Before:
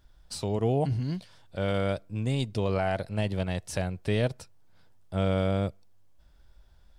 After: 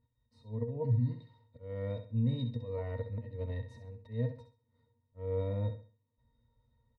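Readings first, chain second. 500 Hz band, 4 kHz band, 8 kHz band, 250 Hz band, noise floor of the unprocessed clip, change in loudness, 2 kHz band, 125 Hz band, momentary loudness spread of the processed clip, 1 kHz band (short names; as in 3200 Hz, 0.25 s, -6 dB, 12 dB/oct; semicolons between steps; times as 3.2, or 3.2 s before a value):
-9.5 dB, -16.0 dB, under -30 dB, -8.5 dB, -57 dBFS, -6.5 dB, -18.5 dB, -4.0 dB, 15 LU, -17.5 dB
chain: auto swell 0.271 s; vibrato 0.56 Hz 77 cents; octave resonator A#, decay 0.13 s; on a send: feedback echo 66 ms, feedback 32%, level -9.5 dB; on the sum: gain +4 dB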